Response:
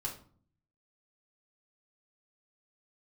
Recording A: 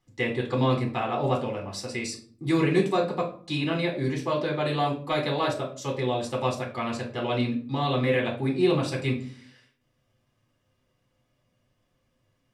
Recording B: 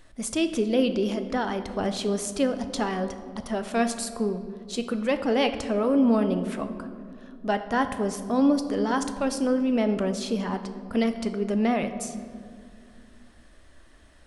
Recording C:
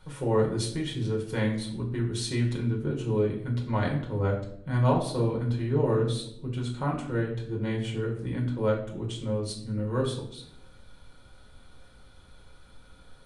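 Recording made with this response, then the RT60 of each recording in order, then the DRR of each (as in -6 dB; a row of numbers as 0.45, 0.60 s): A; 0.45, 2.4, 0.75 s; -2.5, 8.0, -2.0 dB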